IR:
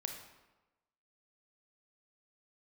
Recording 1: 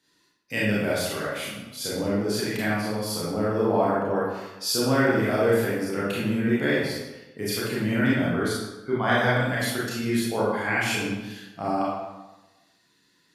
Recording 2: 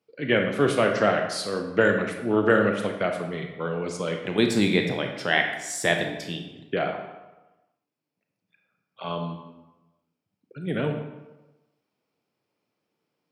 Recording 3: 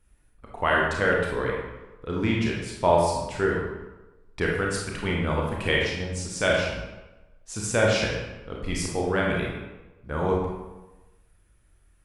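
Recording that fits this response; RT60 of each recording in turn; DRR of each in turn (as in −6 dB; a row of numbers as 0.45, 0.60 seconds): 2; 1.1, 1.1, 1.1 seconds; −8.0, 3.5, −2.5 decibels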